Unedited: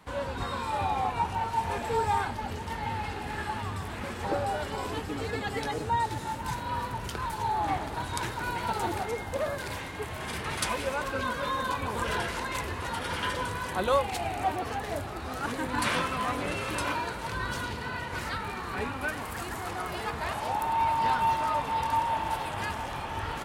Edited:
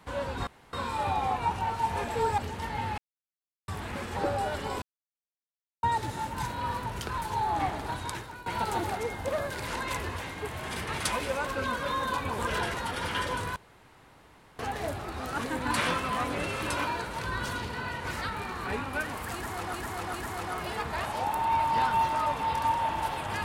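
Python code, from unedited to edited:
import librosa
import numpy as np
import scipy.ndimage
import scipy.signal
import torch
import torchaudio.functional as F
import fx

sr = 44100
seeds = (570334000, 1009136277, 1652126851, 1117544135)

y = fx.edit(x, sr, fx.insert_room_tone(at_s=0.47, length_s=0.26),
    fx.cut(start_s=2.12, length_s=0.34),
    fx.silence(start_s=3.06, length_s=0.7),
    fx.silence(start_s=4.9, length_s=1.01),
    fx.fade_out_to(start_s=7.97, length_s=0.57, floor_db=-17.0),
    fx.move(start_s=12.31, length_s=0.51, to_s=9.75),
    fx.room_tone_fill(start_s=13.64, length_s=1.03),
    fx.repeat(start_s=19.41, length_s=0.4, count=3), tone=tone)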